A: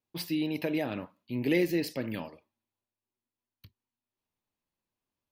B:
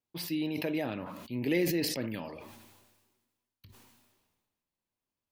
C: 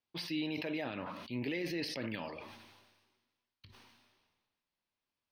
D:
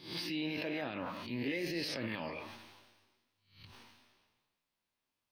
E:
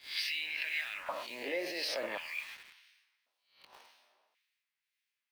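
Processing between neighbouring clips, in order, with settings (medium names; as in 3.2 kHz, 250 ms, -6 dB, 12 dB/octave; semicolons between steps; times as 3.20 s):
decay stretcher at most 40 dB/s; trim -2.5 dB
tilt shelf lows -4 dB, about 760 Hz; peak limiter -27.5 dBFS, peak gain reduction 11 dB; Savitzky-Golay filter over 15 samples
reverse spectral sustain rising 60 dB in 0.46 s; in parallel at -1.5 dB: peak limiter -32.5 dBFS, peak gain reduction 7.5 dB; on the sum: flange 1.1 Hz, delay 5.2 ms, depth 7.8 ms, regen +79%
LFO high-pass square 0.46 Hz 620–2000 Hz; in parallel at -5 dB: word length cut 8-bit, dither none; on the sum: harmonic tremolo 1.9 Hz, depth 50%, crossover 1.7 kHz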